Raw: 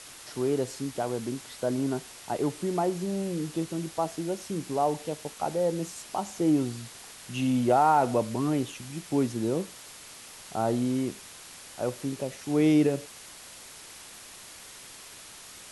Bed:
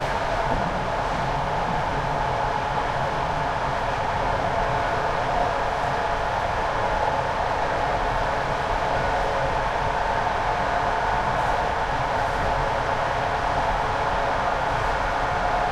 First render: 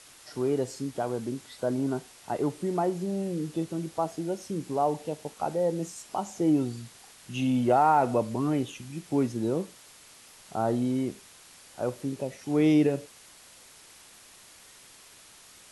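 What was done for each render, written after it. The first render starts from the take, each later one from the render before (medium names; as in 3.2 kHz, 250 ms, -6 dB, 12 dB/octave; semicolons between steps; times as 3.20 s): noise print and reduce 6 dB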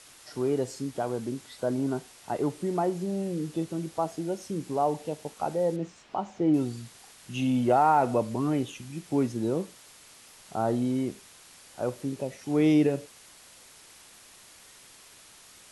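5.76–6.54 s: low-pass 3.2 kHz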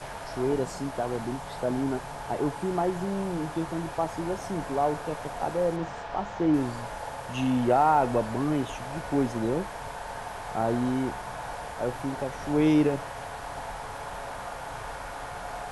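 add bed -14 dB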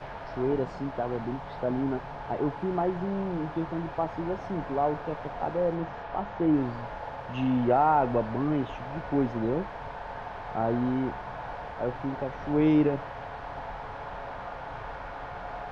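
distance through air 270 m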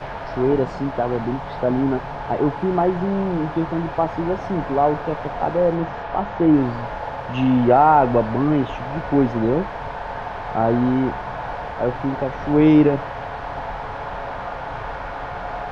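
trim +9 dB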